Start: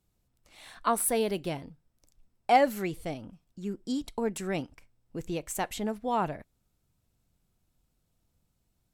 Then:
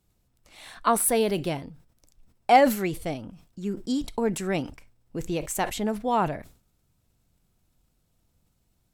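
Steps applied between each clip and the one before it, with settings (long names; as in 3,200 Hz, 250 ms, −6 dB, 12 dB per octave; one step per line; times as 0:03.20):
level that may fall only so fast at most 130 dB per second
level +4.5 dB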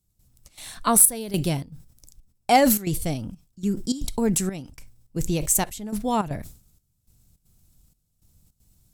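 bass and treble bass +11 dB, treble +14 dB
gate pattern "..xxx.xxxxx." 157 BPM −12 dB
level −1 dB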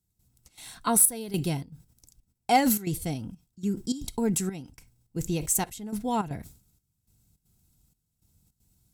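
notch comb filter 590 Hz
level −3.5 dB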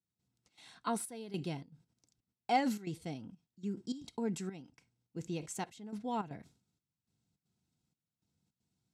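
band-pass filter 160–4,800 Hz
level −8.5 dB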